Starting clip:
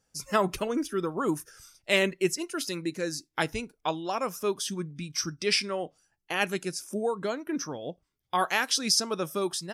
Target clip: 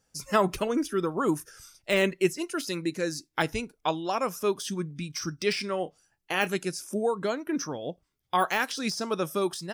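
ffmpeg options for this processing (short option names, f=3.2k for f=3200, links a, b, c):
-filter_complex "[0:a]deesser=0.7,asettb=1/sr,asplit=3[a][b][c];[a]atrim=end=5.714[d];[b]atrim=start=5.71:end=6.49,asetpts=PTS-STARTPTS,afade=t=in:d=0.004:c=qsin,afade=t=out:st=0.776:d=0.004:c=qsin,asplit=2[e][f];[f]adelay=27,volume=-13.5dB[g];[e][g]amix=inputs=2:normalize=0,atrim=end_sample=34398[h];[c]atrim=start=6.486[i];[d][h]acrossfade=d=0.004:c1=hsin:c2=qsin[j];[j][i]acrossfade=d=0.004:c1=qsin:c2=hsin,volume=2dB"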